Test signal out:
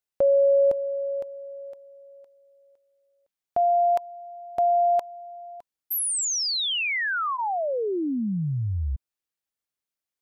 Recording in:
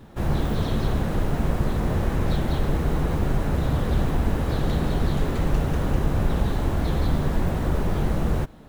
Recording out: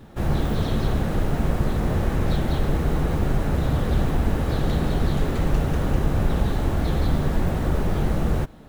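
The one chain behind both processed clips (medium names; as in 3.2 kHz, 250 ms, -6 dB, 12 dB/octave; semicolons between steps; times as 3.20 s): band-stop 1 kHz, Q 21; trim +1 dB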